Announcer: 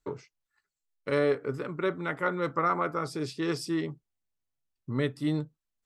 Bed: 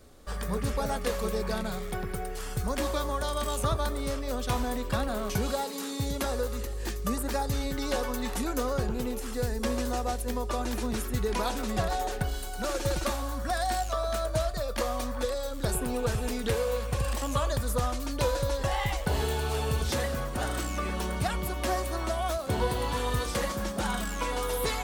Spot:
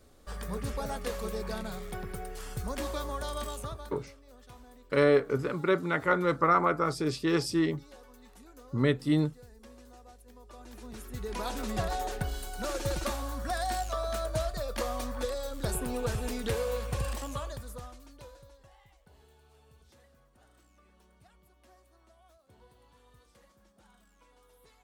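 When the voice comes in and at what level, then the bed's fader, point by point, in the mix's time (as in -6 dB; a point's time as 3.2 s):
3.85 s, +3.0 dB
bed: 3.42 s -5 dB
4.16 s -23 dB
10.32 s -23 dB
11.6 s -3 dB
17.03 s -3 dB
18.84 s -32 dB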